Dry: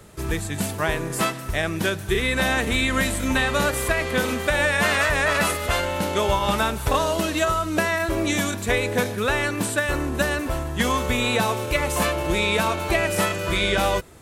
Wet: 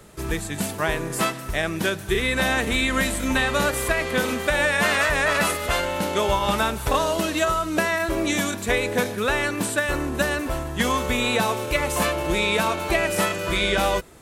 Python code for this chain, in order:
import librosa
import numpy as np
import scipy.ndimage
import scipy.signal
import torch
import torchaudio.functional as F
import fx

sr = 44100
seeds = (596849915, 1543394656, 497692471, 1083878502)

y = fx.peak_eq(x, sr, hz=94.0, db=-6.0, octaves=0.71)